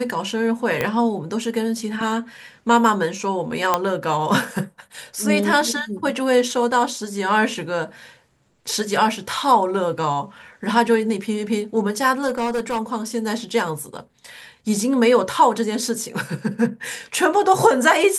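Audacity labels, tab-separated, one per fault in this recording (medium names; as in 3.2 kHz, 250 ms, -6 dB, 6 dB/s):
0.810000	0.810000	pop -7 dBFS
3.740000	3.740000	pop -3 dBFS
12.280000	12.790000	clipped -18.5 dBFS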